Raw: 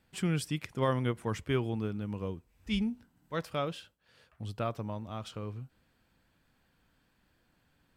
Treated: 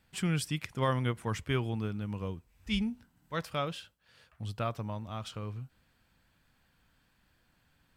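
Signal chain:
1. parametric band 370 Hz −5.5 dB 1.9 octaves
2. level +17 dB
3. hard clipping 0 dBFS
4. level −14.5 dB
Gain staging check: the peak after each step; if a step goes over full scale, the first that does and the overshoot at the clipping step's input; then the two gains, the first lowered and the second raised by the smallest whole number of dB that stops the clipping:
−20.0, −3.0, −3.0, −17.5 dBFS
no step passes full scale

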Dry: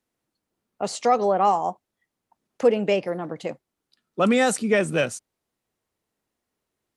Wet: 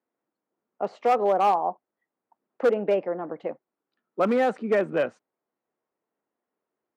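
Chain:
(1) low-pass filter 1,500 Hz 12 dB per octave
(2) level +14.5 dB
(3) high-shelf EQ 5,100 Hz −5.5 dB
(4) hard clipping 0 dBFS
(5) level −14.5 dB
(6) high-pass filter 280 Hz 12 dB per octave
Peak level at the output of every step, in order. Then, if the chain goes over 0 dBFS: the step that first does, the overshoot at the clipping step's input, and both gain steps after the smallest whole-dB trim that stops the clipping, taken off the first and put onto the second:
−8.5, +6.0, +6.0, 0.0, −14.5, −10.5 dBFS
step 2, 6.0 dB
step 2 +8.5 dB, step 5 −8.5 dB

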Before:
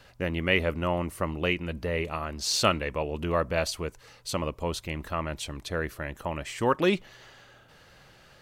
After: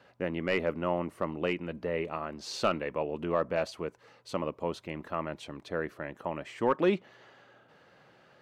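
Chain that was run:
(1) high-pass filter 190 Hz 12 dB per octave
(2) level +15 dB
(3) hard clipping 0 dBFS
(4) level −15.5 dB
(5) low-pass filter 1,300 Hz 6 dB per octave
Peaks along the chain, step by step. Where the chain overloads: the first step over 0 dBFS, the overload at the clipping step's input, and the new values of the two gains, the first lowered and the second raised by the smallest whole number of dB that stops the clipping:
−6.5, +8.5, 0.0, −15.5, −15.5 dBFS
step 2, 8.5 dB
step 2 +6 dB, step 4 −6.5 dB

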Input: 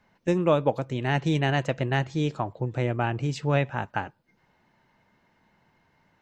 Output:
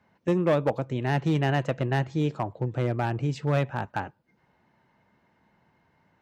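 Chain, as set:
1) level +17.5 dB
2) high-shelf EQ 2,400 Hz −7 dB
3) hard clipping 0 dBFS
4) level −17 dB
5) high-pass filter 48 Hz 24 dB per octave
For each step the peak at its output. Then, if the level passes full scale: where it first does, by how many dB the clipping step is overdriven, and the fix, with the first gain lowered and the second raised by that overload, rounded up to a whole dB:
+8.5, +8.0, 0.0, −17.0, −13.0 dBFS
step 1, 8.0 dB
step 1 +9.5 dB, step 4 −9 dB

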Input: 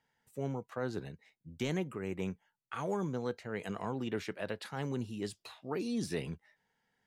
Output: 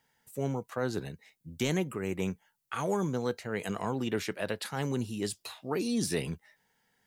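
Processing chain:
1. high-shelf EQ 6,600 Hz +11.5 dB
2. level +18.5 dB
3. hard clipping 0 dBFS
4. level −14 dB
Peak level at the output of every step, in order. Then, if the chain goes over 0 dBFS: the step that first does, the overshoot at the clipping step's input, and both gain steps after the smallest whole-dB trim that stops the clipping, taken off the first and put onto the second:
−21.5, −3.0, −3.0, −17.0 dBFS
no step passes full scale

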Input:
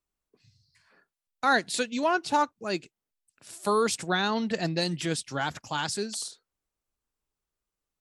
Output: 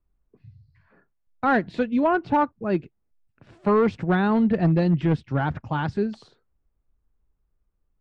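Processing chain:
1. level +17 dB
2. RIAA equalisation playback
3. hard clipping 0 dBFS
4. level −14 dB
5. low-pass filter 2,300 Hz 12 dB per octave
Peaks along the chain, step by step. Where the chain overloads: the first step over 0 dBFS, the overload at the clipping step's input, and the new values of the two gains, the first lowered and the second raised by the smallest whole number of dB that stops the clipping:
+4.5, +5.5, 0.0, −14.0, −13.5 dBFS
step 1, 5.5 dB
step 1 +11 dB, step 4 −8 dB

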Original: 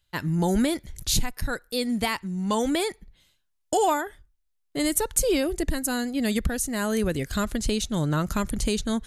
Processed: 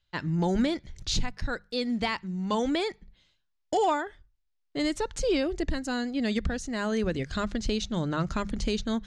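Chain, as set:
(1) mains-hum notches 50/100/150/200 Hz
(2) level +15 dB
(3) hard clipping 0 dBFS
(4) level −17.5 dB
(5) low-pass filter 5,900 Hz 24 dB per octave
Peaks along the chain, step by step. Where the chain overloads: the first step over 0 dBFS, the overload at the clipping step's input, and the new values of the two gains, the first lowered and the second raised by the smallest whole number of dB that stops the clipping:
−8.0, +7.0, 0.0, −17.5, −17.0 dBFS
step 2, 7.0 dB
step 2 +8 dB, step 4 −10.5 dB

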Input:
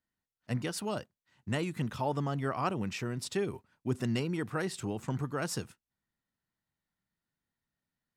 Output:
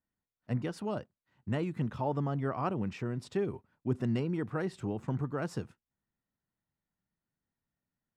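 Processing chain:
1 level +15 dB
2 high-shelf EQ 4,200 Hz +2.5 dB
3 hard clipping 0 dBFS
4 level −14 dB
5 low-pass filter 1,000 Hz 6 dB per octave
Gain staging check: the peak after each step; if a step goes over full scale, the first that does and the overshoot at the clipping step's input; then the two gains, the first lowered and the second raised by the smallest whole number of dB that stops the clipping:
−3.0, −3.0, −3.0, −17.0, −19.0 dBFS
no step passes full scale

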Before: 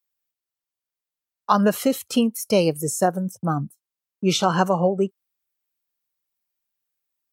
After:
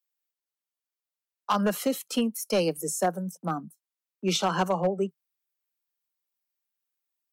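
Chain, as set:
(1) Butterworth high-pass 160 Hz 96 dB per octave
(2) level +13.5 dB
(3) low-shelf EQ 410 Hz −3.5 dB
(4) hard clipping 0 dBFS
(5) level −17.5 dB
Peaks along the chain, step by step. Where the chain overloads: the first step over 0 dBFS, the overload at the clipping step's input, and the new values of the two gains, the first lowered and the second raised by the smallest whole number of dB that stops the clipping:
−4.0, +9.5, +9.0, 0.0, −17.5 dBFS
step 2, 9.0 dB
step 2 +4.5 dB, step 5 −8.5 dB

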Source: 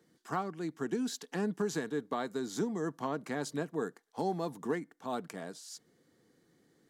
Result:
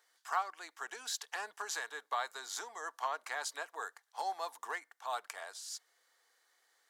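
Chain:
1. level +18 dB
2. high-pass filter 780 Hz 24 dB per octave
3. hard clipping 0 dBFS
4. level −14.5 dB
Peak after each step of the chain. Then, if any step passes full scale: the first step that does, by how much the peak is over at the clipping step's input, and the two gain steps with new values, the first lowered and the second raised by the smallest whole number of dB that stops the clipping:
−4.0, −4.5, −4.5, −19.0 dBFS
no step passes full scale

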